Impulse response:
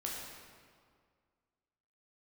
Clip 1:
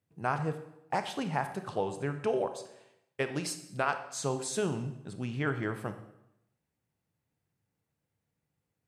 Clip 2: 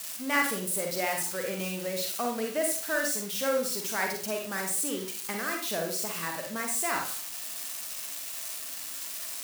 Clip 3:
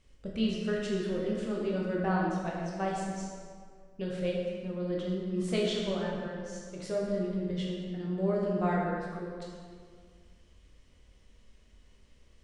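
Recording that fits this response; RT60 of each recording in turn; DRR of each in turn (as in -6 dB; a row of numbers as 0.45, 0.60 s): 3; 0.85, 0.40, 2.0 s; 8.5, 1.5, -3.5 dB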